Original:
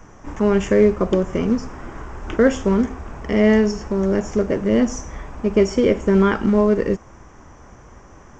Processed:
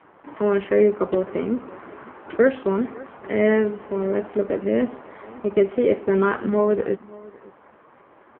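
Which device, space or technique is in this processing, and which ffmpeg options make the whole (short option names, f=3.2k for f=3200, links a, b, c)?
satellite phone: -af "highpass=300,lowpass=3.3k,aecho=1:1:555:0.0841" -ar 8000 -c:a libopencore_amrnb -b:a 5900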